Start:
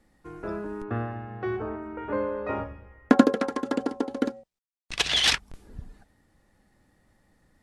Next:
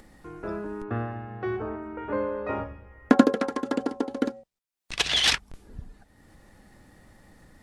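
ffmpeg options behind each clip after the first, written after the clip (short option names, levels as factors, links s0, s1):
-af "acompressor=mode=upward:threshold=0.00794:ratio=2.5"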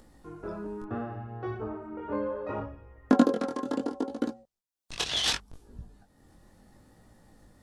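-af "equalizer=f=2100:w=1.5:g=-7.5,flanger=delay=17:depth=6.7:speed=0.7"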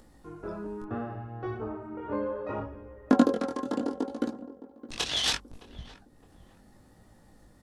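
-filter_complex "[0:a]asplit=2[s0][s1];[s1]adelay=614,lowpass=f=1000:p=1,volume=0.168,asplit=2[s2][s3];[s3]adelay=614,lowpass=f=1000:p=1,volume=0.42,asplit=2[s4][s5];[s5]adelay=614,lowpass=f=1000:p=1,volume=0.42,asplit=2[s6][s7];[s7]adelay=614,lowpass=f=1000:p=1,volume=0.42[s8];[s0][s2][s4][s6][s8]amix=inputs=5:normalize=0"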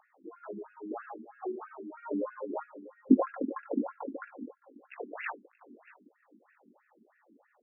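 -af "afftfilt=real='re*between(b*sr/1024,270*pow(2000/270,0.5+0.5*sin(2*PI*3.1*pts/sr))/1.41,270*pow(2000/270,0.5+0.5*sin(2*PI*3.1*pts/sr))*1.41)':imag='im*between(b*sr/1024,270*pow(2000/270,0.5+0.5*sin(2*PI*3.1*pts/sr))/1.41,270*pow(2000/270,0.5+0.5*sin(2*PI*3.1*pts/sr))*1.41)':win_size=1024:overlap=0.75,volume=1.33"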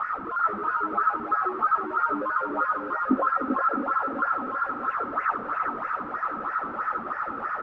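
-af "aeval=exprs='val(0)+0.5*0.0299*sgn(val(0))':c=same,lowpass=f=1300:t=q:w=13,aecho=1:1:392:0.531,volume=0.668"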